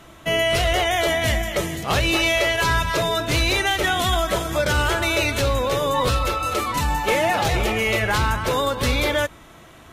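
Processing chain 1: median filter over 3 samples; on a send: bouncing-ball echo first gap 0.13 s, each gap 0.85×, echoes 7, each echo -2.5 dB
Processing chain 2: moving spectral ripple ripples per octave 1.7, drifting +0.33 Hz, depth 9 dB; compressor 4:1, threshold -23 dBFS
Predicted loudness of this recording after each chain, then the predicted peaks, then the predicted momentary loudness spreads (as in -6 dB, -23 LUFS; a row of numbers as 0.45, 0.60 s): -17.5, -25.0 LUFS; -5.0, -14.0 dBFS; 4, 3 LU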